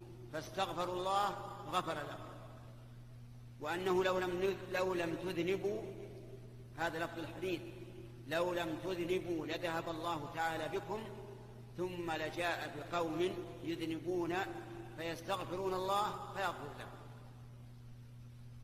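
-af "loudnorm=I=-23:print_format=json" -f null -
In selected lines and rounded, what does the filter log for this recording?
"input_i" : "-39.1",
"input_tp" : "-19.2",
"input_lra" : "3.5",
"input_thresh" : "-50.4",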